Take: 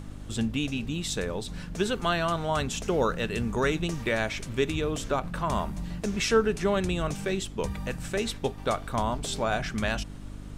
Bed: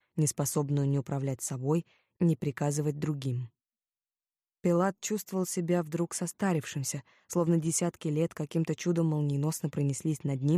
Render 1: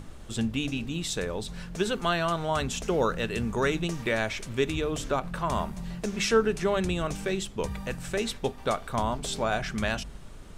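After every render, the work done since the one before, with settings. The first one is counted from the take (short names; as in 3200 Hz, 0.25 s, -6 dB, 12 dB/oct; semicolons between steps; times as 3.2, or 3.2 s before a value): de-hum 50 Hz, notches 6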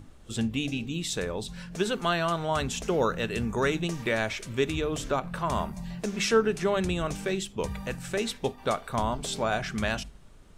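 noise print and reduce 8 dB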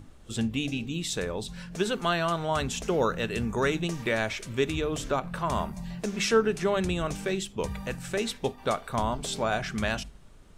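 nothing audible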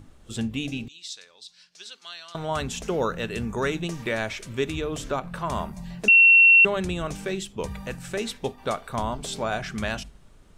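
0.88–2.35 band-pass 4700 Hz, Q 2.2; 6.08–6.65 bleep 2720 Hz -10.5 dBFS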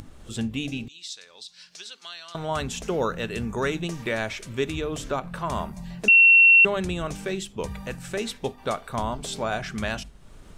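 upward compressor, threshold -36 dBFS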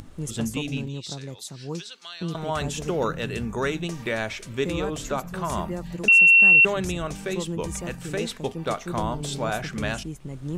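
add bed -5 dB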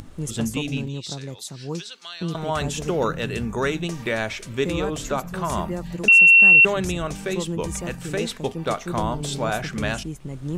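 gain +2.5 dB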